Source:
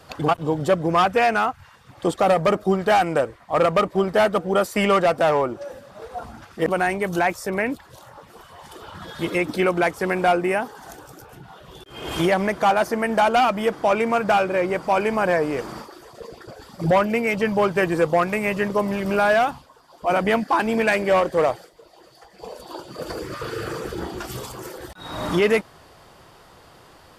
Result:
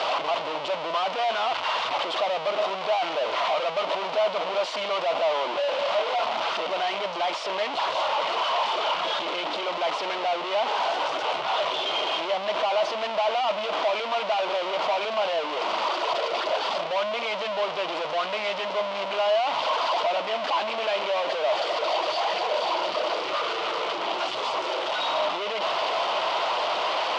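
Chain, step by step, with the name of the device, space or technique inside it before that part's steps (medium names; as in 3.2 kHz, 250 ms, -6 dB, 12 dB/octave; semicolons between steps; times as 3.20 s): home computer beeper (one-bit comparator; cabinet simulation 630–4300 Hz, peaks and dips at 630 Hz +10 dB, 980 Hz +6 dB, 1.7 kHz -8 dB, 3 kHz +5 dB); trim -3.5 dB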